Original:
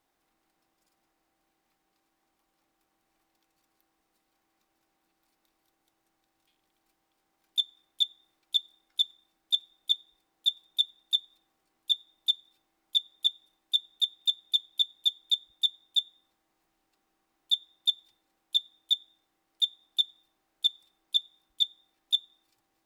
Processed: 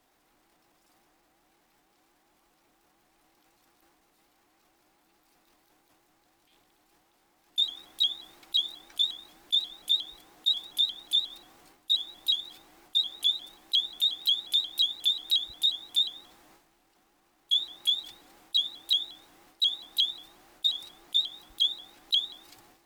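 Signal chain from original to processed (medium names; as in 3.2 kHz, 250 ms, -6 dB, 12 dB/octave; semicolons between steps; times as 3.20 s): transient shaper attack -10 dB, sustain +11 dB; vibrato with a chosen wave saw up 5.6 Hz, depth 160 cents; trim +8.5 dB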